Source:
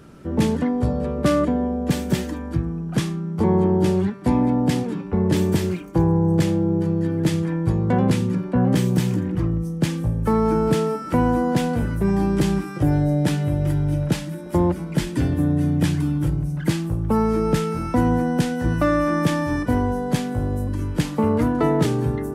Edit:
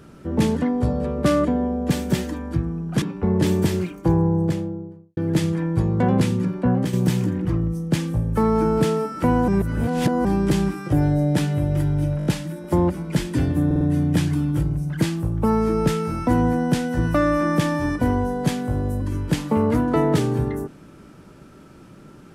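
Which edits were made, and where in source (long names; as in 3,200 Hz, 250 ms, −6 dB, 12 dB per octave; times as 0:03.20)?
0:03.02–0:04.92: remove
0:05.97–0:07.07: fade out and dull
0:08.58–0:08.83: fade out, to −8.5 dB
0:11.38–0:12.15: reverse
0:14.08: stutter 0.02 s, 5 plays
0:15.48: stutter 0.05 s, 4 plays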